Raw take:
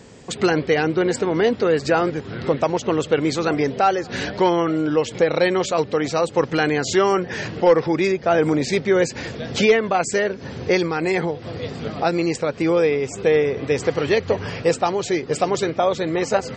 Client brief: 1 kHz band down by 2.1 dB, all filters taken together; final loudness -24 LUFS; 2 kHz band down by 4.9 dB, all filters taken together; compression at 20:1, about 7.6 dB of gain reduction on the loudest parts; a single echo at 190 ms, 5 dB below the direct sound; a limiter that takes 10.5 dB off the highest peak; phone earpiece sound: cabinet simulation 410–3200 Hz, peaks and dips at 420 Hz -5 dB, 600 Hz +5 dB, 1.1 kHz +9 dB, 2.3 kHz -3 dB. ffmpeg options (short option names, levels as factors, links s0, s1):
-af "equalizer=f=1000:t=o:g=-6.5,equalizer=f=2000:t=o:g=-3.5,acompressor=threshold=0.112:ratio=20,alimiter=limit=0.0891:level=0:latency=1,highpass=410,equalizer=f=420:t=q:w=4:g=-5,equalizer=f=600:t=q:w=4:g=5,equalizer=f=1100:t=q:w=4:g=9,equalizer=f=2300:t=q:w=4:g=-3,lowpass=f=3200:w=0.5412,lowpass=f=3200:w=1.3066,aecho=1:1:190:0.562,volume=2.51"